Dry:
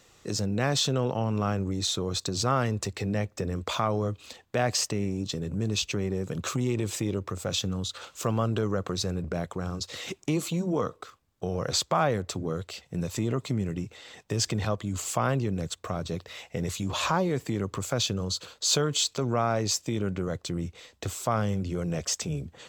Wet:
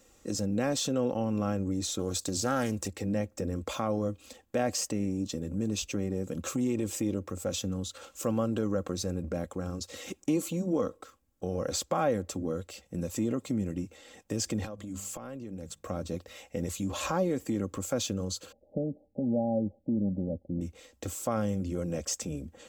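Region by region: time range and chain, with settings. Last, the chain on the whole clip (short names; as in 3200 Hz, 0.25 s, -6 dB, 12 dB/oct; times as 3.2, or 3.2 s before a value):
1.99–2.88 high shelf 3800 Hz +11.5 dB + Doppler distortion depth 0.18 ms
14.65–15.86 notches 50/100/150/200 Hz + compressor 10:1, threshold -33 dBFS
18.52–20.61 rippled Chebyshev low-pass 830 Hz, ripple 9 dB + tilt -2 dB/oct
whole clip: graphic EQ 125/1000/2000/4000 Hz -4/-7/-5/-9 dB; de-esser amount 55%; comb 3.7 ms, depth 52%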